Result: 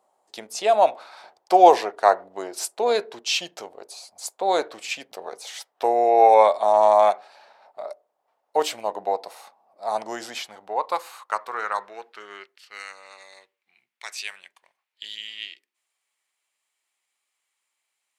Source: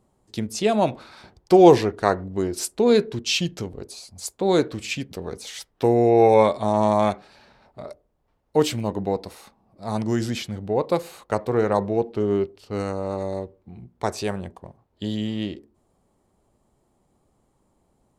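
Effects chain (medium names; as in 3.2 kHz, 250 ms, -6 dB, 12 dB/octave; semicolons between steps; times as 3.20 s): high-pass sweep 700 Hz -> 2.3 kHz, 10.12–13.24 s; trim -1 dB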